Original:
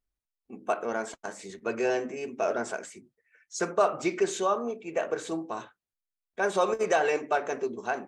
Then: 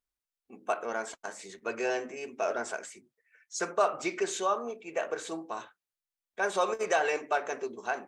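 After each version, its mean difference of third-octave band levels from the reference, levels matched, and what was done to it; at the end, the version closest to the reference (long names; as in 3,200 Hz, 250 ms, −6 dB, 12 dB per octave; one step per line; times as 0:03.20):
2.5 dB: low-shelf EQ 360 Hz −11 dB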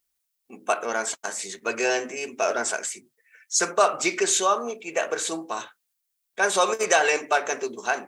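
5.5 dB: spectral tilt +3.5 dB per octave
level +5.5 dB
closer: first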